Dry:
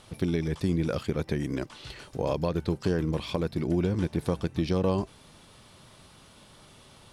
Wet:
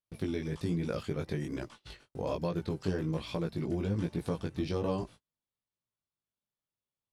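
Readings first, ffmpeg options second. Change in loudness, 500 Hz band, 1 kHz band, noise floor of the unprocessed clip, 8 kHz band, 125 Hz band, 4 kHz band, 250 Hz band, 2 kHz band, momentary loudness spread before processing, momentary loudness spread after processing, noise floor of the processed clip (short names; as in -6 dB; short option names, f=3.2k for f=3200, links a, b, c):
-5.5 dB, -5.5 dB, -5.5 dB, -54 dBFS, -6.5 dB, -5.5 dB, -6.0 dB, -5.5 dB, -5.5 dB, 6 LU, 6 LU, under -85 dBFS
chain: -af "agate=range=-40dB:threshold=-42dB:ratio=16:detection=peak,flanger=delay=17:depth=4:speed=1.2,volume=-2.5dB"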